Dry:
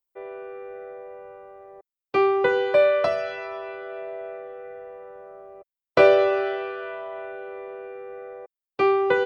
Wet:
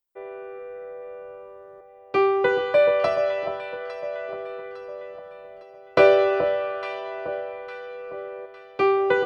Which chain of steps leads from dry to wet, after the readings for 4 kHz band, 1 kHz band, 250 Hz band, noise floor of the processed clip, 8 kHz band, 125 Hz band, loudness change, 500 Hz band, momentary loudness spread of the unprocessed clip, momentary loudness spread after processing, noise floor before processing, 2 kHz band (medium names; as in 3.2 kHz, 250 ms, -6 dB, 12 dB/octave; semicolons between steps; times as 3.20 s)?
+0.5 dB, +0.5 dB, 0.0 dB, -48 dBFS, no reading, +1.0 dB, 0.0 dB, +0.5 dB, 21 LU, 20 LU, under -85 dBFS, 0.0 dB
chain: echo whose repeats swap between lows and highs 428 ms, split 1.1 kHz, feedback 64%, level -7 dB